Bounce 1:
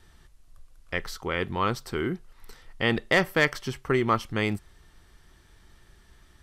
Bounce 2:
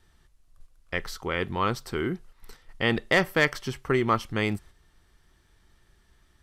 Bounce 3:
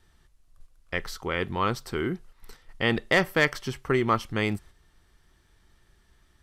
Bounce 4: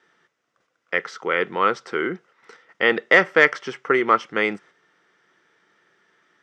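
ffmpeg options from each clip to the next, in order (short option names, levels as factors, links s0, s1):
-af "agate=range=0.501:threshold=0.00562:ratio=16:detection=peak"
-af anull
-af "highpass=f=200:w=0.5412,highpass=f=200:w=1.3066,equalizer=f=240:t=q:w=4:g=-6,equalizer=f=480:t=q:w=4:g=7,equalizer=f=1400:t=q:w=4:g=8,equalizer=f=2000:t=q:w=4:g=6,equalizer=f=4300:t=q:w=4:g=-8,lowpass=f=6000:w=0.5412,lowpass=f=6000:w=1.3066,volume=1.41"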